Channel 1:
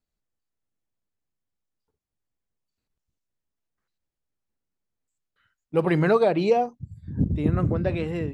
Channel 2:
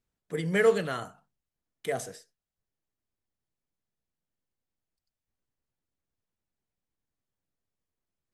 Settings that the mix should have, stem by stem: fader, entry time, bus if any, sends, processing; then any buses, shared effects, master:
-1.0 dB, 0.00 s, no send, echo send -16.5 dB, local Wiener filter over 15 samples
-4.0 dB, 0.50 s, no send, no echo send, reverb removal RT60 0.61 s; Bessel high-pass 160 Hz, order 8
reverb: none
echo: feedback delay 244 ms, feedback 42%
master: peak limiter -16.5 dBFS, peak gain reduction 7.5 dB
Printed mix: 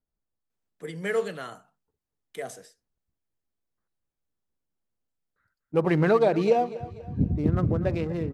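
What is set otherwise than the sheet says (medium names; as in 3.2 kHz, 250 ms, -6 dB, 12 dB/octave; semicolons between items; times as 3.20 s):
stem 2: missing reverb removal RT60 0.61 s; master: missing peak limiter -16.5 dBFS, peak gain reduction 7.5 dB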